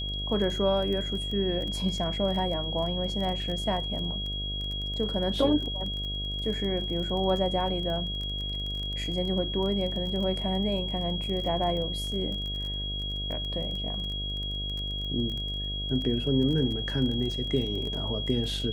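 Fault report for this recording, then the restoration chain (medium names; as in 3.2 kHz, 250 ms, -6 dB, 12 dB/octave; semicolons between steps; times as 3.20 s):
buzz 50 Hz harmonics 14 -35 dBFS
crackle 21 per s -33 dBFS
whine 3.3 kHz -33 dBFS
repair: de-click; de-hum 50 Hz, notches 14; band-stop 3.3 kHz, Q 30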